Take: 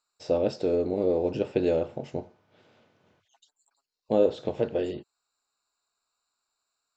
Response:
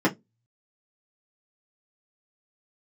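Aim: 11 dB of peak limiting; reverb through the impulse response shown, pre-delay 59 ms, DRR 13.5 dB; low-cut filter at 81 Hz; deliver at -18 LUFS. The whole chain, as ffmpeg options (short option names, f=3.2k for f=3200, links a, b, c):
-filter_complex "[0:a]highpass=81,alimiter=limit=-20.5dB:level=0:latency=1,asplit=2[a][b];[1:a]atrim=start_sample=2205,adelay=59[c];[b][c]afir=irnorm=-1:irlink=0,volume=-28dB[d];[a][d]amix=inputs=2:normalize=0,volume=13.5dB"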